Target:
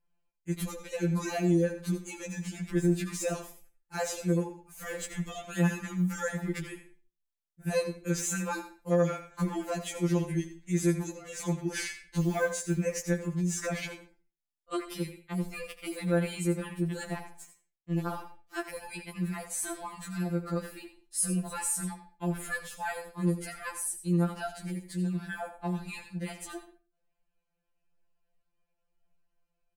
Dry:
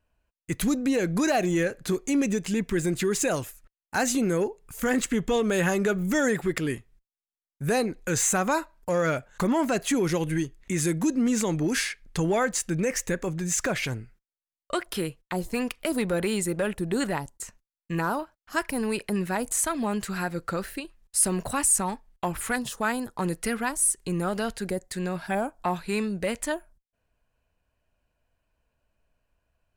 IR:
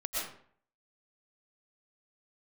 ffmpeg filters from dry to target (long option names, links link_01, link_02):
-filter_complex "[0:a]lowshelf=frequency=290:gain=3,asettb=1/sr,asplit=3[link_01][link_02][link_03];[link_01]atrim=end=12.194[link_04];[link_02]atrim=start=12.19:end=12.77,asetpts=PTS-STARTPTS,afade=type=in:duration=0.004:curve=qsin,afade=type=out:start_time=0.576:duration=0.004:curve=qsin,acrusher=bits=5:mode=log:mix=0:aa=0.000001[link_05];[link_03]atrim=start=12.766[link_06];[link_04][link_05]acrossfade=duration=0.004:curve1=hsin:curve2=qsin[link_07];[link_07][link_06]acrossfade=duration=0.004:curve1=qsin:curve2=hsin,asettb=1/sr,asplit=3[link_08][link_09][link_10];[link_08]atrim=end=16.934[link_11];[link_09]atrim=start=16.93:end=18.74,asetpts=PTS-STARTPTS,afade=type=in:duration=0.004:curve=qsin,afade=type=out:start_time=1.806:duration=0.004:curve=qsin,aeval=exprs='sgn(val(0))*max(abs(val(0))-0.0075,0)':channel_layout=same[link_12];[link_10]atrim=start=18.736[link_13];[link_11][link_12]acrossfade=duration=0.004:curve1=hsin:curve2=qsin[link_14];[link_14][link_13]acrossfade=duration=0.004:curve1=qsin:curve2=hsin,aecho=1:1:82:0.2,asplit=2[link_15][link_16];[1:a]atrim=start_sample=2205,asetrate=79380,aresample=44100,adelay=22[link_17];[link_16][link_17]afir=irnorm=-1:irlink=0,volume=-10.5dB[link_18];[link_15][link_18]amix=inputs=2:normalize=0,afftfilt=real='re*2.83*eq(mod(b,8),0)':imag='im*2.83*eq(mod(b,8),0)':win_size=2048:overlap=0.75,volume=-6dB"